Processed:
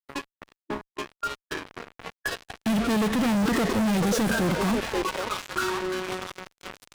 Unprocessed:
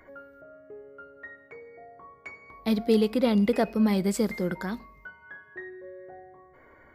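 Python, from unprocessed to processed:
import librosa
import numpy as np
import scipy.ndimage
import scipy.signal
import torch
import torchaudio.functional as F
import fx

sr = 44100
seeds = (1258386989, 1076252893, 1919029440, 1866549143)

y = fx.echo_stepped(x, sr, ms=536, hz=710.0, octaves=0.7, feedback_pct=70, wet_db=-4)
y = fx.fuzz(y, sr, gain_db=48.0, gate_db=-42.0)
y = fx.formant_shift(y, sr, semitones=-5)
y = y * librosa.db_to_amplitude(-8.5)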